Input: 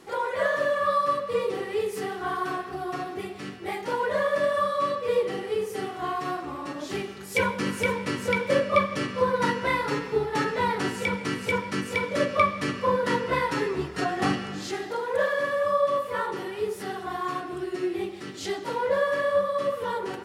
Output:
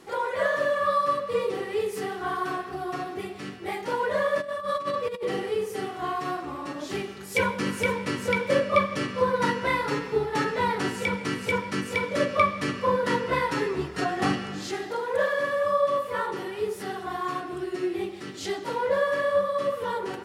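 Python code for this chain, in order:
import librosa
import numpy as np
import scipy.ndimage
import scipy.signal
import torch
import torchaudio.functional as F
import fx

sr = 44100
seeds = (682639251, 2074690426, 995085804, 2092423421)

y = fx.over_compress(x, sr, threshold_db=-28.0, ratio=-0.5, at=(4.4, 5.49), fade=0.02)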